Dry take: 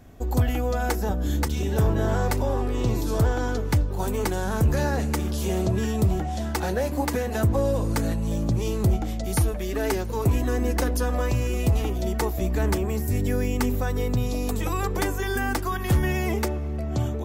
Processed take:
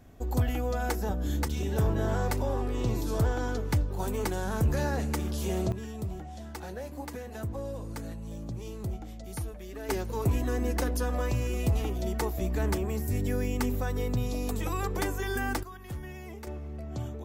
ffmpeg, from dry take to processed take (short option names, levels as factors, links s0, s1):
-af "asetnsamples=n=441:p=0,asendcmd='5.72 volume volume -13.5dB;9.89 volume volume -5dB;15.63 volume volume -17.5dB;16.47 volume volume -10dB',volume=0.562"